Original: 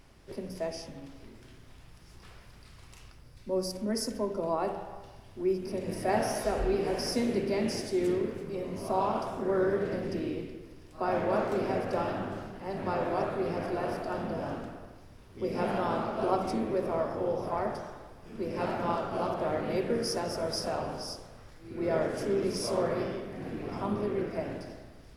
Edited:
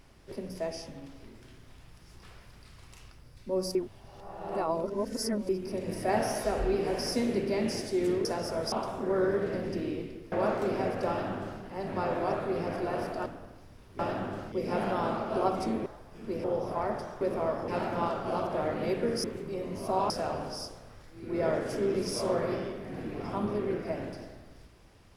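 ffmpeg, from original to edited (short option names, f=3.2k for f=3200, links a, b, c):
-filter_complex "[0:a]asplit=15[a][b][c][d][e][f][g][h][i][j][k][l][m][n][o];[a]atrim=end=3.752[p];[b]atrim=start=3.748:end=5.492,asetpts=PTS-STARTPTS,areverse[q];[c]atrim=start=5.488:end=8.252[r];[d]atrim=start=20.108:end=20.582[s];[e]atrim=start=9.108:end=10.712[t];[f]atrim=start=11.218:end=14.162[u];[g]atrim=start=14.658:end=15.392[v];[h]atrim=start=11.978:end=12.512[w];[i]atrim=start=15.388:end=16.732[x];[j]atrim=start=17.968:end=18.552[y];[k]atrim=start=17.198:end=17.972[z];[l]atrim=start=16.728:end=17.202[aa];[m]atrim=start=18.548:end=20.112[ab];[n]atrim=start=8.248:end=9.112[ac];[o]atrim=start=20.578[ad];[p][q]acrossfade=d=0.004:c1=hsin:c2=hsin[ae];[ae][r]acrossfade=d=0.004:c1=hsin:c2=hsin[af];[af][s]acrossfade=d=0.004:c1=hsin:c2=hsin[ag];[ag][t]acrossfade=d=0.004:c1=hsin:c2=hsin[ah];[ah][u]acrossfade=d=0.004:c1=hsin:c2=hsin[ai];[ai][v]acrossfade=d=0.004:c1=hsin:c2=hsin[aj];[aj][w]acrossfade=d=0.004:c1=hsin:c2=hsin[ak];[ak][x]acrossfade=d=0.004:c1=hsin:c2=hsin[al];[al][y]acrossfade=d=0.004:c1=hsin:c2=hsin[am];[am][z]acrossfade=d=0.004:c1=hsin:c2=hsin[an];[an][aa]acrossfade=d=0.004:c1=hsin:c2=hsin[ao];[ao][ab]acrossfade=d=0.004:c1=hsin:c2=hsin[ap];[ap][ac]acrossfade=d=0.004:c1=hsin:c2=hsin[aq];[aq][ad]acrossfade=d=0.004:c1=hsin:c2=hsin"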